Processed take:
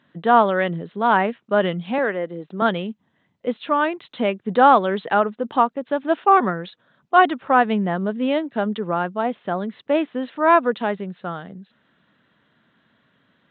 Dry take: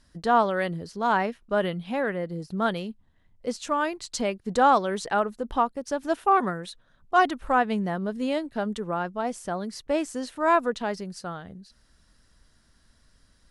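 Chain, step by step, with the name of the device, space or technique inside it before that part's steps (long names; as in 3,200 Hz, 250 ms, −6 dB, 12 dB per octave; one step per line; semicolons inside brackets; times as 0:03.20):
0:01.98–0:02.62: high-pass filter 270 Hz 12 dB per octave
Bluetooth headset (high-pass filter 140 Hz 24 dB per octave; downsampling to 8,000 Hz; level +6 dB; SBC 64 kbit/s 16,000 Hz)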